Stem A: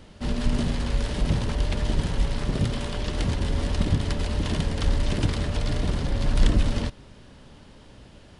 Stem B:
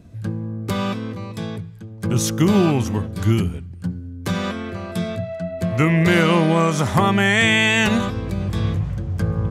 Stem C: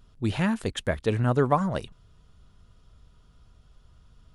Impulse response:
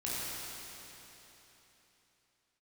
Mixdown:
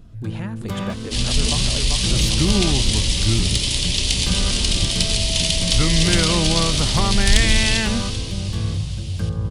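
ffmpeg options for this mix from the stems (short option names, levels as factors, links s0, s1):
-filter_complex "[0:a]aexciter=amount=13.8:drive=3.1:freq=2300,adelay=900,volume=0.2,asplit=3[s0][s1][s2];[s1]volume=0.501[s3];[s2]volume=0.282[s4];[1:a]volume=0.237[s5];[2:a]acompressor=threshold=0.0158:ratio=2.5,volume=0.596,asplit=2[s6][s7];[s7]volume=0.668[s8];[3:a]atrim=start_sample=2205[s9];[s3][s9]afir=irnorm=-1:irlink=0[s10];[s4][s8]amix=inputs=2:normalize=0,aecho=0:1:393|786|1179|1572|1965|2358:1|0.46|0.212|0.0973|0.0448|0.0206[s11];[s0][s5][s6][s10][s11]amix=inputs=5:normalize=0,lowshelf=f=93:g=9.5,acontrast=67"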